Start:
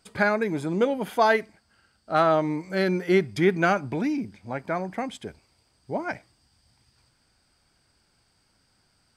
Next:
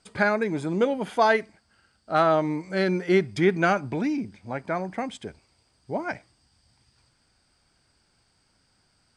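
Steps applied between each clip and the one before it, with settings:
Butterworth low-pass 10,000 Hz 48 dB per octave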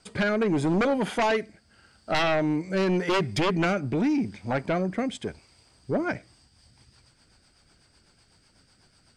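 downward compressor 1.5 to 1, threshold −25 dBFS, peak gain reduction 4 dB
rotating-speaker cabinet horn 0.85 Hz, later 8 Hz, at 0:06.07
sine wavefolder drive 12 dB, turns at −11.5 dBFS
level −8 dB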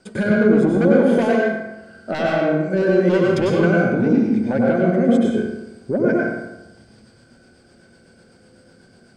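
downward compressor 2.5 to 1, threshold −31 dBFS, peak gain reduction 6.5 dB
hollow resonant body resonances 230/360/520/1,500 Hz, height 14 dB, ringing for 35 ms
convolution reverb RT60 1.0 s, pre-delay 93 ms, DRR −3 dB
level −1 dB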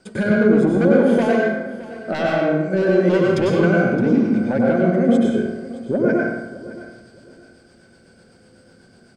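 repeating echo 617 ms, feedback 25%, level −17 dB

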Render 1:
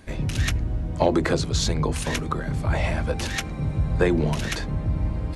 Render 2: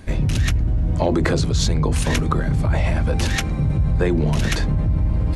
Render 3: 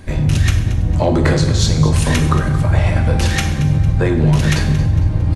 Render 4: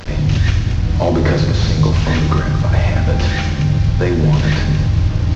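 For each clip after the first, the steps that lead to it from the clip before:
low-shelf EQ 200 Hz +7 dB; in parallel at +1 dB: compressor whose output falls as the input rises −22 dBFS; on the sum: level −4 dB
repeating echo 227 ms, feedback 41%, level −14 dB; on a send at −3.5 dB: convolution reverb, pre-delay 3 ms; on the sum: level +2.5 dB
linear delta modulator 32 kbit/s, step −26 dBFS

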